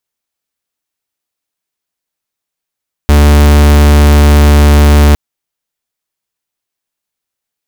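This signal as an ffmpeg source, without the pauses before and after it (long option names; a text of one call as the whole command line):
ffmpeg -f lavfi -i "aevalsrc='0.596*(2*lt(mod(73.5*t,1),0.44)-1)':duration=2.06:sample_rate=44100" out.wav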